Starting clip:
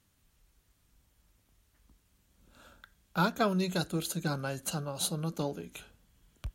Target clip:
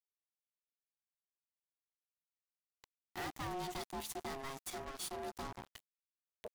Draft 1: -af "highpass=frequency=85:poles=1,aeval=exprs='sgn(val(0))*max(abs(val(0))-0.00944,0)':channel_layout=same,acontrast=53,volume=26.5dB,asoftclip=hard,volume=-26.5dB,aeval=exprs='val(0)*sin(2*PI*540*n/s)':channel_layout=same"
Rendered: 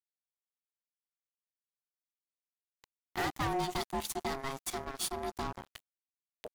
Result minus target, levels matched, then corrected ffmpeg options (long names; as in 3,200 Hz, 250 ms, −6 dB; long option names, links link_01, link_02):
gain into a clipping stage and back: distortion −4 dB
-af "highpass=frequency=85:poles=1,aeval=exprs='sgn(val(0))*max(abs(val(0))-0.00944,0)':channel_layout=same,acontrast=53,volume=36.5dB,asoftclip=hard,volume=-36.5dB,aeval=exprs='val(0)*sin(2*PI*540*n/s)':channel_layout=same"